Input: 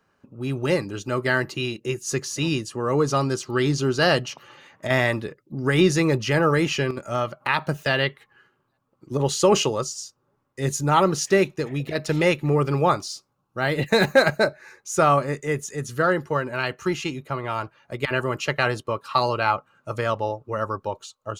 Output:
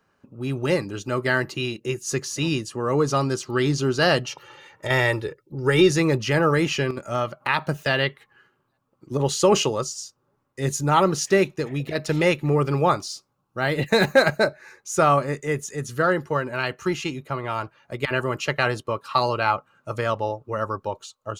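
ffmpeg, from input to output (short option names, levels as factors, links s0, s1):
-filter_complex "[0:a]asettb=1/sr,asplit=3[s0][s1][s2];[s0]atrim=end=4.264[s3];[s1]atrim=start=4.26:end=5.9,asetpts=PTS-STARTPTS,afade=t=in:d=0.004:c=qsin,afade=t=out:st=1.636:d=0.004:c=qsin,aecho=1:1:2.2:0.65,atrim=end_sample=72324[s4];[s2]atrim=start=5.896[s5];[s3][s4]acrossfade=d=0.004:c1=hsin:c2=qsin[s6];[s6][s5]acrossfade=d=0.004:c1=qsin:c2=hsin"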